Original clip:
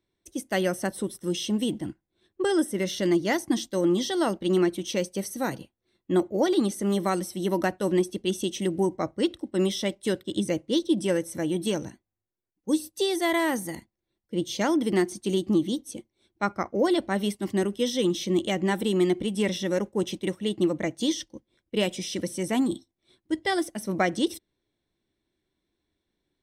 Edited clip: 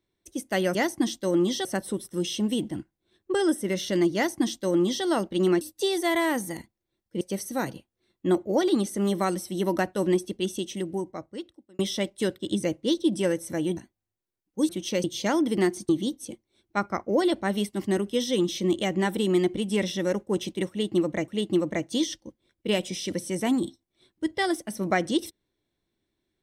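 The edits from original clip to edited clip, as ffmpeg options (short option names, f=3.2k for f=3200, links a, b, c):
-filter_complex "[0:a]asplit=11[a][b][c][d][e][f][g][h][i][j][k];[a]atrim=end=0.752[l];[b]atrim=start=3.248:end=4.152[m];[c]atrim=start=0.748:end=4.712[n];[d]atrim=start=12.788:end=14.392[o];[e]atrim=start=5.058:end=9.64,asetpts=PTS-STARTPTS,afade=t=out:st=2.992:d=1.59[p];[f]atrim=start=9.64:end=11.622,asetpts=PTS-STARTPTS,afade=t=in:d=0.004:c=hsin[q];[g]atrim=start=11.868:end=12.792[r];[h]atrim=start=4.708:end=5.062[s];[i]atrim=start=14.388:end=15.242[t];[j]atrim=start=15.548:end=20.942[u];[k]atrim=start=20.358[v];[l][m]acrossfade=d=0.004:c1=hsin:c2=hsin[w];[w][n]acrossfade=d=0.004:c1=hsin:c2=hsin[x];[x][o]acrossfade=d=0.004:c1=hsin:c2=hsin[y];[p][q]concat=n=2:v=0:a=1[z];[y][z]acrossfade=d=0.004:c1=hsin:c2=hsin[aa];[aa][r]acrossfade=d=0.004:c1=hsin:c2=hsin[ab];[ab][s]acrossfade=d=0.004:c1=hsin:c2=hsin[ac];[ac][t]acrossfade=d=0.004:c1=hsin:c2=hsin[ad];[ad][u]acrossfade=d=0.004:c1=hsin:c2=hsin[ae];[ae][v]acrossfade=d=0.004:c1=hsin:c2=hsin"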